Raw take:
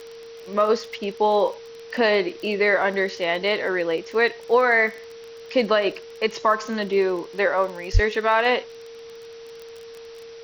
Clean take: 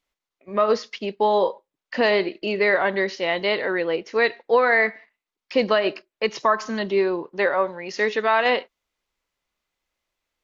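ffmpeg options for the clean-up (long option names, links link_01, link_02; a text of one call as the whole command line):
ffmpeg -i in.wav -filter_complex "[0:a]adeclick=threshold=4,bandreject=frequency=460:width=30,asplit=3[link_01][link_02][link_03];[link_01]afade=type=out:start_time=7.93:duration=0.02[link_04];[link_02]highpass=frequency=140:width=0.5412,highpass=frequency=140:width=1.3066,afade=type=in:start_time=7.93:duration=0.02,afade=type=out:start_time=8.05:duration=0.02[link_05];[link_03]afade=type=in:start_time=8.05:duration=0.02[link_06];[link_04][link_05][link_06]amix=inputs=3:normalize=0,afftdn=noise_reduction=30:noise_floor=-41" out.wav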